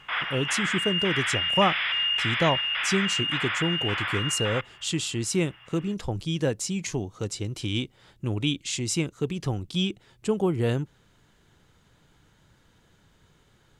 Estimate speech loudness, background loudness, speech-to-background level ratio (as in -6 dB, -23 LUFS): -28.5 LUFS, -25.5 LUFS, -3.0 dB